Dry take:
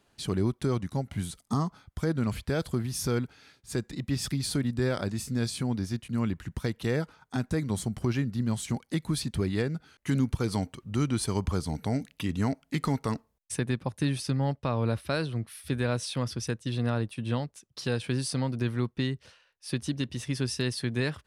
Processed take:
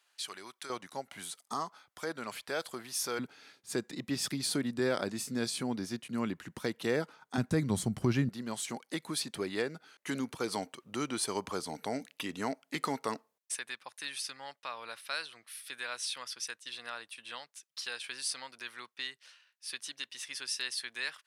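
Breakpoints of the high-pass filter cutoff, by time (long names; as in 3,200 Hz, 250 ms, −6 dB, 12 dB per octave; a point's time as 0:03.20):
1,300 Hz
from 0:00.70 620 Hz
from 0:03.19 270 Hz
from 0:07.38 110 Hz
from 0:08.29 400 Hz
from 0:13.55 1,400 Hz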